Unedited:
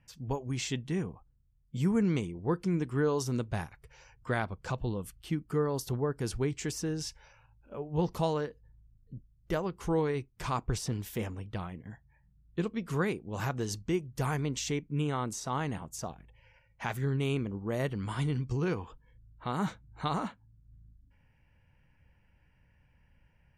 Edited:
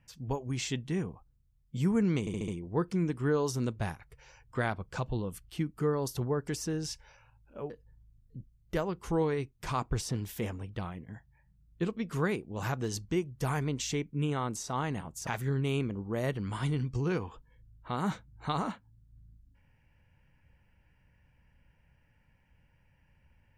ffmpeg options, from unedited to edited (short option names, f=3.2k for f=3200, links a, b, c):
-filter_complex "[0:a]asplit=8[a][b][c][d][e][f][g][h];[a]atrim=end=2.272[i];[b]atrim=start=2.198:end=2.272[j];[c]atrim=start=2.198:end=2.272[k];[d]atrim=start=2.198:end=2.272[l];[e]atrim=start=2.198:end=6.202[m];[f]atrim=start=6.638:end=7.862[n];[g]atrim=start=8.468:end=16.042[o];[h]atrim=start=16.828[p];[i][j]acrossfade=d=0.004:c1=hsin:c2=hsin[q];[q][k]acrossfade=d=0.004:c1=hsin:c2=hsin[r];[r][l]acrossfade=d=0.004:c1=hsin:c2=hsin[s];[s][m]acrossfade=d=0.004:c1=hsin:c2=hsin[t];[t][n]acrossfade=d=0.004:c1=hsin:c2=hsin[u];[u][o]acrossfade=d=0.004:c1=hsin:c2=hsin[v];[v][p]acrossfade=d=0.004:c1=hsin:c2=hsin"